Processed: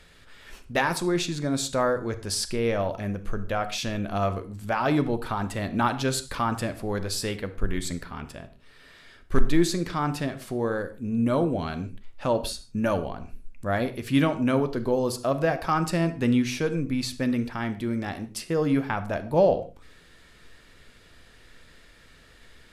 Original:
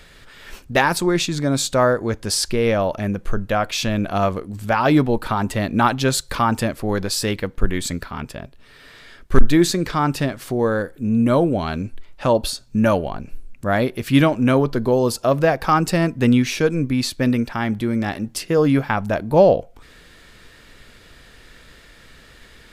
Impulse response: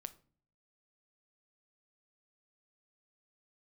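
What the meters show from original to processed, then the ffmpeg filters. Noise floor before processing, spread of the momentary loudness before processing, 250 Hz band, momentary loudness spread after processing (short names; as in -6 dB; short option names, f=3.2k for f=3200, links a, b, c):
-48 dBFS, 9 LU, -7.0 dB, 9 LU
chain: -filter_complex "[1:a]atrim=start_sample=2205,atrim=end_sample=3969,asetrate=24255,aresample=44100[a];[0:a][a]afir=irnorm=-1:irlink=0,volume=-6dB"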